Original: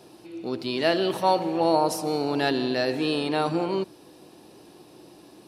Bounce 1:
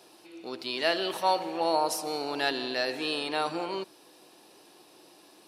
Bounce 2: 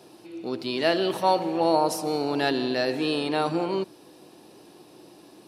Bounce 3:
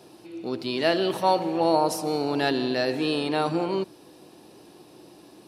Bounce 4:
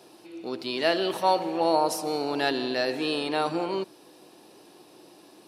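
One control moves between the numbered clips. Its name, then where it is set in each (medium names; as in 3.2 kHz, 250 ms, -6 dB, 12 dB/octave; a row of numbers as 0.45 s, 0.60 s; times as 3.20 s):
high-pass, cutoff frequency: 900 Hz, 120 Hz, 46 Hz, 360 Hz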